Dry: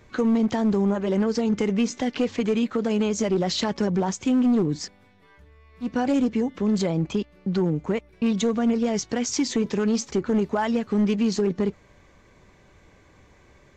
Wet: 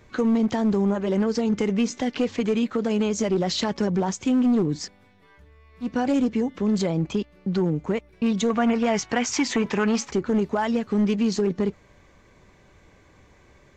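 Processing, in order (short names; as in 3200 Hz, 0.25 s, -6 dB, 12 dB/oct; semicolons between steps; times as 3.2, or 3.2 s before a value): 8.5–10.12 band shelf 1400 Hz +8.5 dB 2.4 oct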